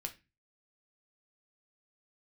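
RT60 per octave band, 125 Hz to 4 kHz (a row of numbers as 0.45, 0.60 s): 0.50, 0.45, 0.25, 0.25, 0.30, 0.25 s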